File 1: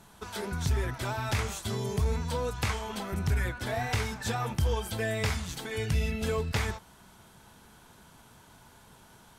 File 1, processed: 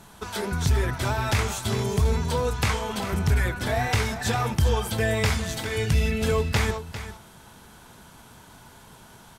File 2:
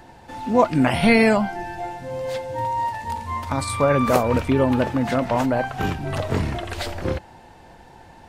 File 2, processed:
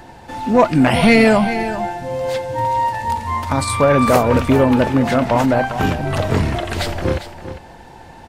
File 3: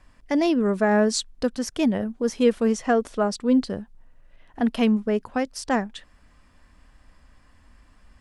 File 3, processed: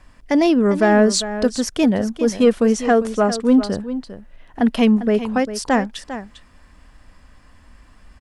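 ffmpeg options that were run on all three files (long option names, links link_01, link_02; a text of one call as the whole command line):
ffmpeg -i in.wav -af "acontrast=86,aecho=1:1:400:0.251,volume=-1dB" out.wav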